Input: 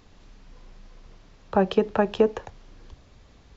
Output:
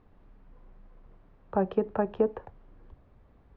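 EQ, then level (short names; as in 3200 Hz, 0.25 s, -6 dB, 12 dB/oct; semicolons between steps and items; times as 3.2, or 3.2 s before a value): LPF 1400 Hz 12 dB/oct; -5.5 dB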